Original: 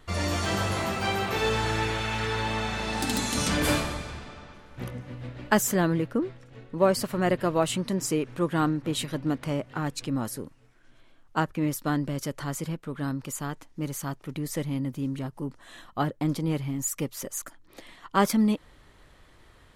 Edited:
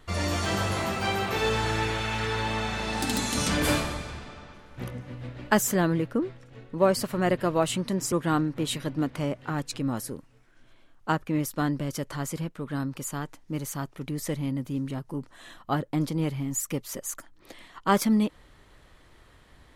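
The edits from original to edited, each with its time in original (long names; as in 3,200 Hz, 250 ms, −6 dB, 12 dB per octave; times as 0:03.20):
0:08.12–0:08.40: remove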